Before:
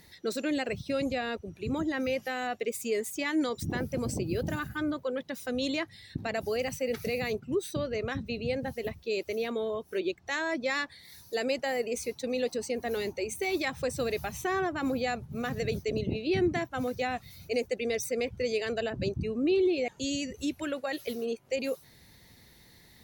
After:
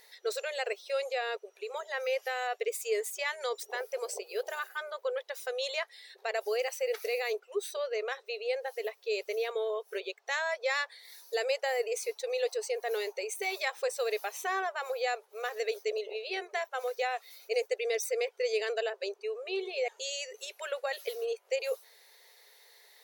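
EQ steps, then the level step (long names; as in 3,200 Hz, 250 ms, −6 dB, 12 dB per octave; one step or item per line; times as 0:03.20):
linear-phase brick-wall high-pass 390 Hz
0.0 dB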